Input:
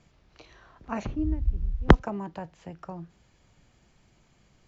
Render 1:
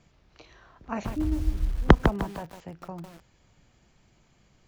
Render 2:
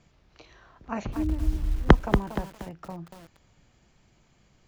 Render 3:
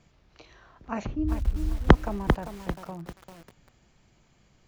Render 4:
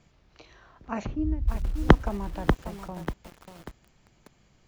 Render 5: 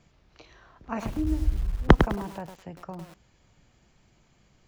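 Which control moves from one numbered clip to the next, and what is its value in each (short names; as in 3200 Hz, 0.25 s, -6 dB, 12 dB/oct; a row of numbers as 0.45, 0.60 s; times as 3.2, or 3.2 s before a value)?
lo-fi delay, time: 0.152, 0.235, 0.395, 0.59, 0.103 s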